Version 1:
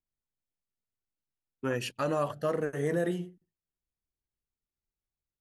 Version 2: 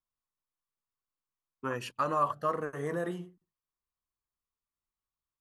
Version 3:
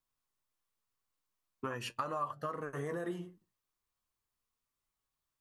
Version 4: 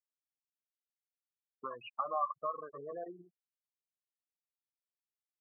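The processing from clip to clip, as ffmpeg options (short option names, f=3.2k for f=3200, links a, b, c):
-af "equalizer=f=1.1k:w=2.4:g=15,volume=-5.5dB"
-af "acompressor=threshold=-40dB:ratio=5,flanger=delay=7:depth=3.4:regen=60:speed=0.4:shape=triangular,volume=9dB"
-filter_complex "[0:a]adynamicsmooth=sensitivity=4:basefreq=4.9k,afftfilt=real='re*gte(hypot(re,im),0.0251)':imag='im*gte(hypot(re,im),0.0251)':win_size=1024:overlap=0.75,asplit=3[a][b][c];[a]bandpass=f=730:t=q:w=8,volume=0dB[d];[b]bandpass=f=1.09k:t=q:w=8,volume=-6dB[e];[c]bandpass=f=2.44k:t=q:w=8,volume=-9dB[f];[d][e][f]amix=inputs=3:normalize=0,volume=10.5dB"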